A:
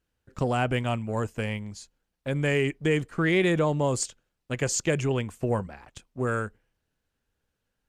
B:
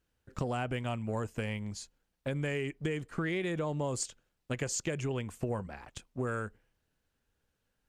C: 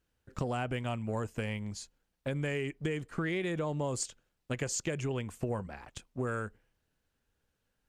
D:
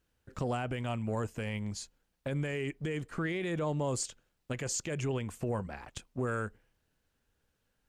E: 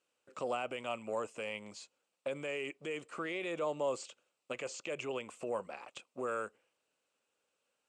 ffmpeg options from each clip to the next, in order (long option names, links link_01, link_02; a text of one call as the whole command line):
ffmpeg -i in.wav -af "acompressor=threshold=-31dB:ratio=6" out.wav
ffmpeg -i in.wav -af anull out.wav
ffmpeg -i in.wav -af "alimiter=level_in=3dB:limit=-24dB:level=0:latency=1:release=20,volume=-3dB,volume=2dB" out.wav
ffmpeg -i in.wav -filter_complex "[0:a]highpass=380,equalizer=frequency=550:width_type=q:width=4:gain=6,equalizer=frequency=1200:width_type=q:width=4:gain=5,equalizer=frequency=1700:width_type=q:width=4:gain=-7,equalizer=frequency=2600:width_type=q:width=4:gain=7,equalizer=frequency=7900:width_type=q:width=4:gain=7,lowpass=frequency=9700:width=0.5412,lowpass=frequency=9700:width=1.3066,acrossover=split=4400[link_01][link_02];[link_02]acompressor=threshold=-52dB:ratio=4:attack=1:release=60[link_03];[link_01][link_03]amix=inputs=2:normalize=0,volume=-2.5dB" out.wav